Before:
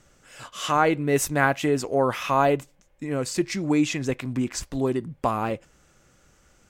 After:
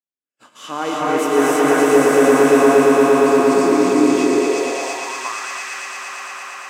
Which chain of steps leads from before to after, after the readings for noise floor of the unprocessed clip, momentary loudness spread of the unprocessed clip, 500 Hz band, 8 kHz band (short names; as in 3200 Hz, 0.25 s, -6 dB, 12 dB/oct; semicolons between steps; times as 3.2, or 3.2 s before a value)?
-60 dBFS, 10 LU, +12.0 dB, +7.0 dB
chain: swelling echo 0.115 s, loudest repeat 5, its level -4 dB; gate -41 dBFS, range -43 dB; non-linear reverb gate 0.35 s rising, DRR -5.5 dB; high-pass sweep 260 Hz -> 1800 Hz, 4.17–5.6; gain -6.5 dB